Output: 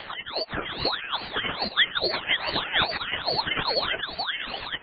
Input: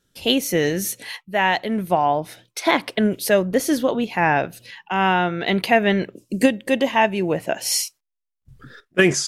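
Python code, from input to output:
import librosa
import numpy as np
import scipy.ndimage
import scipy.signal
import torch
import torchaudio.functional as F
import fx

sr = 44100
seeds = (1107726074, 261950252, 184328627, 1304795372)

p1 = x + 0.5 * 10.0 ** (-18.5 / 20.0) * np.diff(np.sign(x), prepend=np.sign(x[:1]))
p2 = fx.over_compress(p1, sr, threshold_db=-25.0, ratio=-0.5)
p3 = fx.chorus_voices(p2, sr, voices=4, hz=0.35, base_ms=16, depth_ms=1.5, mix_pct=35)
p4 = fx.stretch_vocoder_free(p3, sr, factor=0.52)
p5 = p4 + fx.echo_alternate(p4, sr, ms=518, hz=880.0, feedback_pct=55, wet_db=-4, dry=0)
p6 = fx.freq_invert(p5, sr, carrier_hz=2800)
p7 = fx.ring_lfo(p6, sr, carrier_hz=1200.0, swing_pct=65, hz=2.4)
y = p7 * librosa.db_to_amplitude(9.0)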